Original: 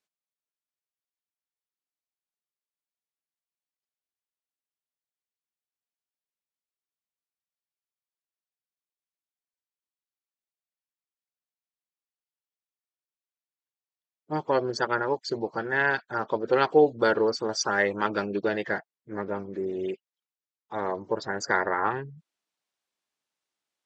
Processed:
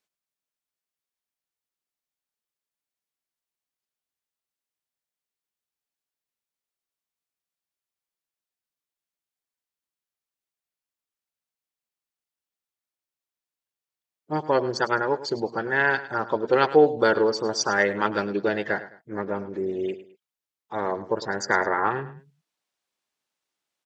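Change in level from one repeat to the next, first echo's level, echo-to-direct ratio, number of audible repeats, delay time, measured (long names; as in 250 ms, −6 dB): −10.0 dB, −15.0 dB, −14.5 dB, 2, 105 ms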